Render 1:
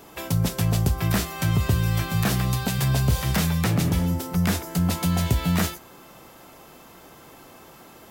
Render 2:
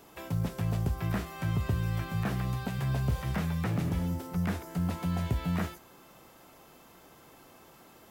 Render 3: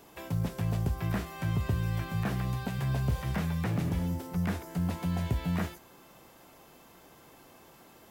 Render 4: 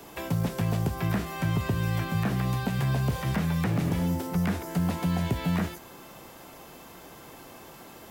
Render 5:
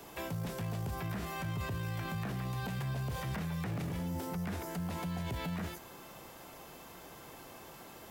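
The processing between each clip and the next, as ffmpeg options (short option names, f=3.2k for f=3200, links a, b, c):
-filter_complex "[0:a]acrusher=bits=8:mode=log:mix=0:aa=0.000001,acrossover=split=2500[a][b];[b]acompressor=threshold=-41dB:ratio=4:attack=1:release=60[c];[a][c]amix=inputs=2:normalize=0,volume=-8dB"
-af "bandreject=f=1.3k:w=23"
-filter_complex "[0:a]acrossover=split=110|340[a][b][c];[a]acompressor=threshold=-48dB:ratio=4[d];[b]acompressor=threshold=-34dB:ratio=4[e];[c]acompressor=threshold=-41dB:ratio=4[f];[d][e][f]amix=inputs=3:normalize=0,volume=8.5dB"
-af "alimiter=level_in=2dB:limit=-24dB:level=0:latency=1:release=16,volume=-2dB,equalizer=f=260:w=1.5:g=-2.5,volume=-3.5dB"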